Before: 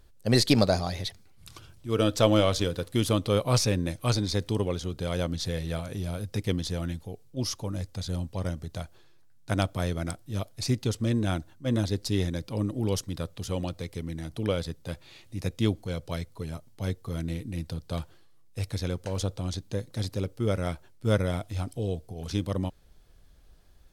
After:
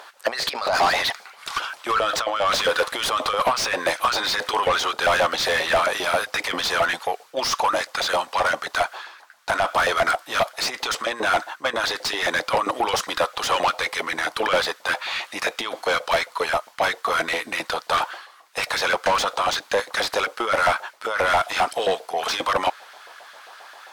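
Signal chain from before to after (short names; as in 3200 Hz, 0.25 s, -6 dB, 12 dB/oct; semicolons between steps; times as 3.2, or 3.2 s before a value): negative-ratio compressor -28 dBFS, ratio -0.5; LFO high-pass saw up 7.5 Hz 670–1600 Hz; overdrive pedal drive 30 dB, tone 2000 Hz, clips at -12 dBFS; gain +3 dB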